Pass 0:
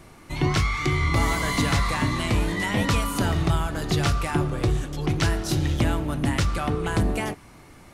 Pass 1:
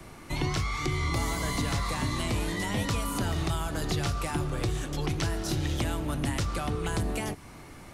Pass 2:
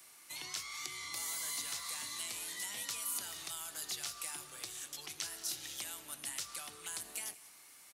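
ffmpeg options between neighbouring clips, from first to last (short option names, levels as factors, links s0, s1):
-filter_complex "[0:a]acrossover=split=110|280|1100|3500[s0][s1][s2][s3][s4];[s0]acompressor=threshold=0.0224:ratio=4[s5];[s1]acompressor=threshold=0.0112:ratio=4[s6];[s2]acompressor=threshold=0.0141:ratio=4[s7];[s3]acompressor=threshold=0.00708:ratio=4[s8];[s4]acompressor=threshold=0.0112:ratio=4[s9];[s5][s6][s7][s8][s9]amix=inputs=5:normalize=0,volume=1.19"
-af "aderivative,aecho=1:1:183:0.119"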